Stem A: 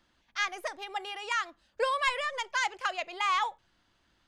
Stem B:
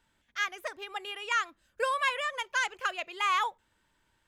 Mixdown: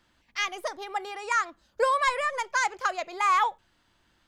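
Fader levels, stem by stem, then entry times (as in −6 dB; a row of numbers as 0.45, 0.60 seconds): +2.0, −2.0 decibels; 0.00, 0.00 seconds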